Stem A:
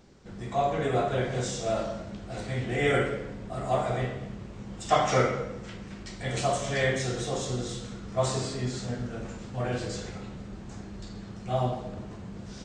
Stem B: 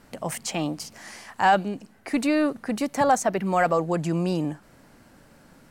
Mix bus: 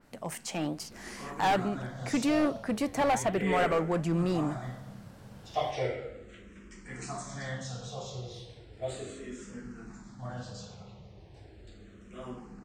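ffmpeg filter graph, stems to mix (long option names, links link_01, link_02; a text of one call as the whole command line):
ffmpeg -i stem1.wav -i stem2.wav -filter_complex "[0:a]asplit=2[link_01][link_02];[link_02]afreqshift=-0.36[link_03];[link_01][link_03]amix=inputs=2:normalize=1,adelay=650,volume=-11dB[link_04];[1:a]flanger=delay=5.1:depth=9.2:regen=82:speed=1.2:shape=triangular,volume=24dB,asoftclip=hard,volume=-24dB,adynamicequalizer=threshold=0.00398:dfrequency=3500:dqfactor=0.7:tfrequency=3500:tqfactor=0.7:attack=5:release=100:ratio=0.375:range=2:mode=cutabove:tftype=highshelf,volume=-3dB[link_05];[link_04][link_05]amix=inputs=2:normalize=0,dynaudnorm=framelen=230:gausssize=5:maxgain=4.5dB" out.wav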